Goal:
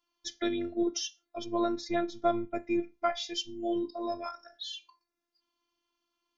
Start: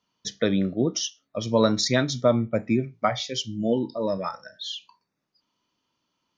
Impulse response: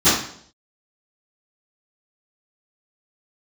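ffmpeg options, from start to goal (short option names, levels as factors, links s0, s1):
-filter_complex "[0:a]asplit=3[s0][s1][s2];[s0]afade=t=out:st=1.43:d=0.02[s3];[s1]lowpass=f=1200:p=1,afade=t=in:st=1.43:d=0.02,afade=t=out:st=2.23:d=0.02[s4];[s2]afade=t=in:st=2.23:d=0.02[s5];[s3][s4][s5]amix=inputs=3:normalize=0,afftfilt=real='hypot(re,im)*cos(PI*b)':imag='0':win_size=512:overlap=0.75,volume=0.75"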